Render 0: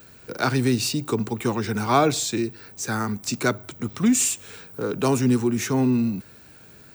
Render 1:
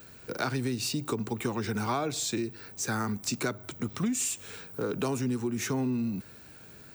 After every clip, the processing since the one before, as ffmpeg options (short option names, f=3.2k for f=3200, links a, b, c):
-af "acompressor=threshold=-25dB:ratio=6,volume=-2dB"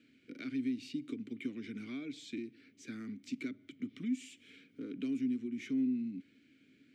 -filter_complex "[0:a]asplit=3[a][b][c];[a]bandpass=f=270:t=q:w=8,volume=0dB[d];[b]bandpass=f=2.29k:t=q:w=8,volume=-6dB[e];[c]bandpass=f=3.01k:t=q:w=8,volume=-9dB[f];[d][e][f]amix=inputs=3:normalize=0,volume=1dB"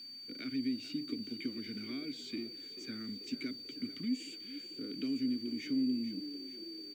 -filter_complex "[0:a]aeval=exprs='val(0)+0.00501*sin(2*PI*4600*n/s)':c=same,acrusher=bits=10:mix=0:aa=0.000001,asplit=7[a][b][c][d][e][f][g];[b]adelay=439,afreqshift=34,volume=-13.5dB[h];[c]adelay=878,afreqshift=68,volume=-18.2dB[i];[d]adelay=1317,afreqshift=102,volume=-23dB[j];[e]adelay=1756,afreqshift=136,volume=-27.7dB[k];[f]adelay=2195,afreqshift=170,volume=-32.4dB[l];[g]adelay=2634,afreqshift=204,volume=-37.2dB[m];[a][h][i][j][k][l][m]amix=inputs=7:normalize=0"